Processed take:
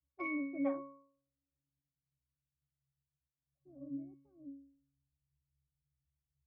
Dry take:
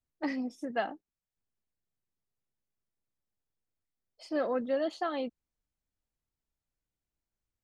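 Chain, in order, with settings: tape speed +18%; pitch-class resonator C#, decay 0.57 s; low-pass sweep 4.6 kHz -> 140 Hz, 0.25–2.10 s; trim +15 dB

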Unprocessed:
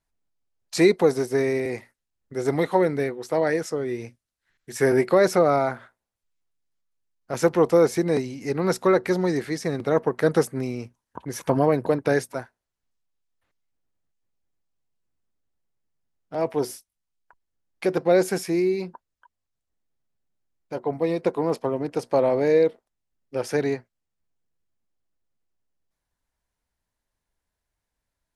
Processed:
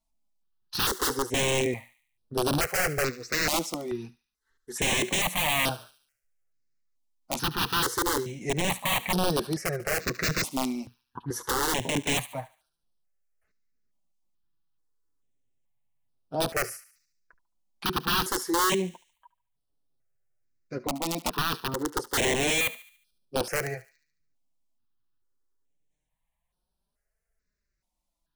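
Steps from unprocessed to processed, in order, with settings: flange 0.22 Hz, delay 4.4 ms, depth 3.9 ms, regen -12%; integer overflow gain 21.5 dB; on a send: thinning echo 72 ms, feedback 49%, high-pass 1.2 kHz, level -16 dB; on the sum: stepped phaser 2.3 Hz 440–7000 Hz; trim +4 dB

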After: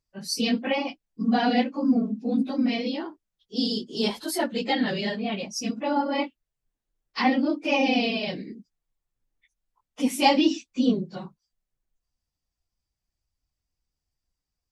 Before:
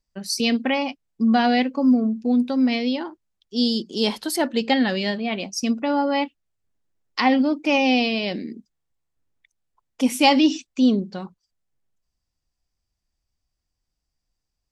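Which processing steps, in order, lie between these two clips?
phase randomisation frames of 50 ms; trim -4 dB

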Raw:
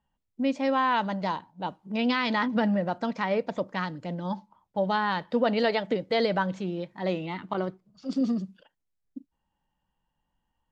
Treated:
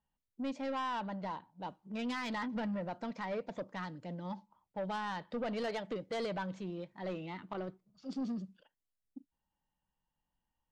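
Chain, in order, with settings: 0.90–1.52 s: low-pass 2.6 kHz -> 4.7 kHz 6 dB/octave; saturation -23 dBFS, distortion -12 dB; trim -8.5 dB

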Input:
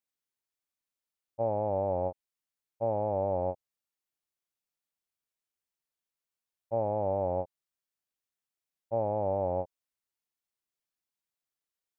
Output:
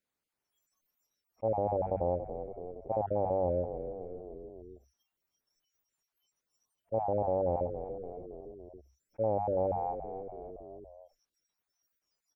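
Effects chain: random holes in the spectrogram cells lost 25%; treble shelf 2.2 kHz -10.5 dB; hum notches 50/100/150/200 Hz; on a send: frequency-shifting echo 273 ms, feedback 46%, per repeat -42 Hz, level -18 dB; on the sum: tape speed -3%; spectral noise reduction 30 dB; level flattener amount 50%

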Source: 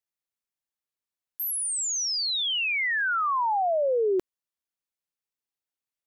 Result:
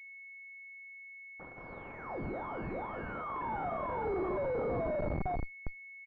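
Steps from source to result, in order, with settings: peak limiter -23.5 dBFS, peak gain reduction 3.5 dB; peaking EQ 770 Hz -5.5 dB 1.1 oct; static phaser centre 540 Hz, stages 6; on a send: frequency-shifting echo 386 ms, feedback 48%, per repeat +110 Hz, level -3 dB; on the sum: simulated room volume 120 m³, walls mixed, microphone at 0.87 m; dynamic bell 190 Hz, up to -3 dB, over -49 dBFS, Q 1.1; Schmitt trigger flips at -41 dBFS; class-D stage that switches slowly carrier 2.2 kHz

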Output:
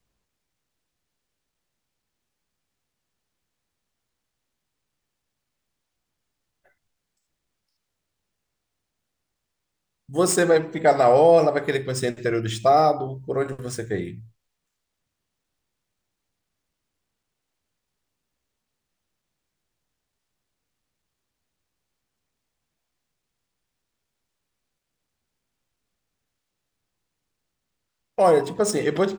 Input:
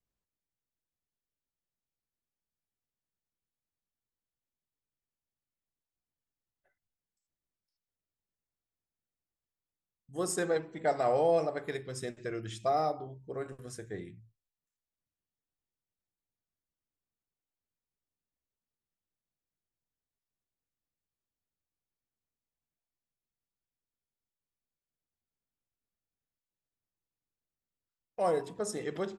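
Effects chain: median filter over 3 samples; in parallel at -2.5 dB: peak limiter -25 dBFS, peak gain reduction 7 dB; on the sum: trim +9 dB

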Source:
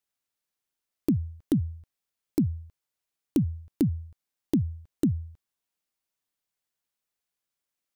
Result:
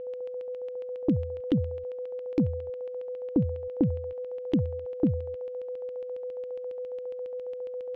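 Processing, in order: whistle 500 Hz -34 dBFS; LFO low-pass square 7.3 Hz 810–2900 Hz; trim -1 dB

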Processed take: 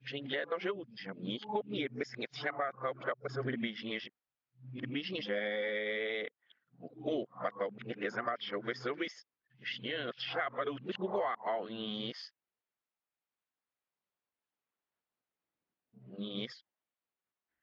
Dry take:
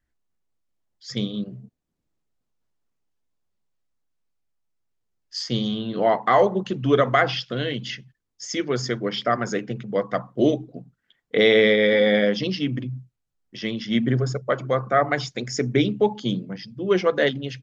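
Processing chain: reverse the whole clip; high-pass 1.2 kHz 6 dB/octave; compression 12:1, threshold -32 dBFS, peak gain reduction 15.5 dB; distance through air 340 m; trim +2.5 dB

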